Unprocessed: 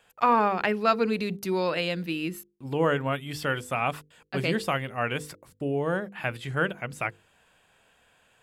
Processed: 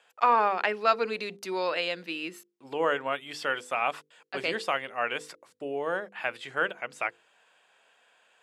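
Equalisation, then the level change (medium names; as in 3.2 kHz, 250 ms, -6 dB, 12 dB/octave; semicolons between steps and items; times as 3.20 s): band-pass 460–7600 Hz; 0.0 dB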